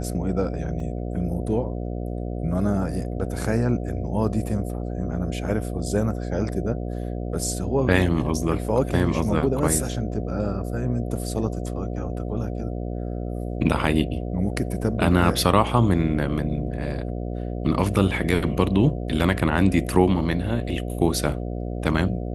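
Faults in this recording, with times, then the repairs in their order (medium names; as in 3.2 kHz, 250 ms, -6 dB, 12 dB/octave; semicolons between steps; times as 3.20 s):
buzz 60 Hz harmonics 12 -29 dBFS
0.80 s: dropout 2.7 ms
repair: de-hum 60 Hz, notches 12; interpolate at 0.80 s, 2.7 ms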